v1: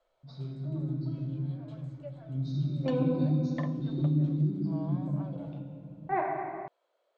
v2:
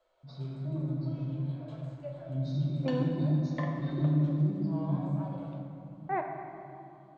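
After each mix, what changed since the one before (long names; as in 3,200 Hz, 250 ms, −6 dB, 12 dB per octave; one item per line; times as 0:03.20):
second voice: send −6.5 dB
background: send on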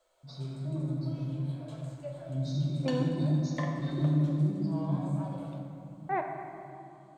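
background: add low-pass filter 8,200 Hz 12 dB per octave
master: remove high-frequency loss of the air 180 metres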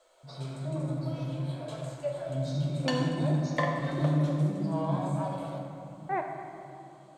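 background +8.5 dB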